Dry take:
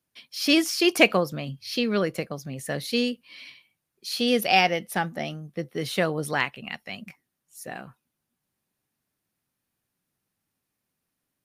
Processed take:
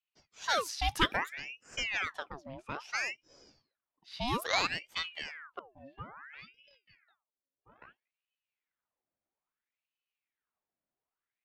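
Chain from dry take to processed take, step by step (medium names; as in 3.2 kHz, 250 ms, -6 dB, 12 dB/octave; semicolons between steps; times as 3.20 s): level-controlled noise filter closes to 1.7 kHz, open at -18 dBFS; 5.59–7.82 s: pitch-class resonator C#, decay 0.2 s; ring modulator with a swept carrier 1.6 kHz, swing 75%, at 0.6 Hz; trim -7.5 dB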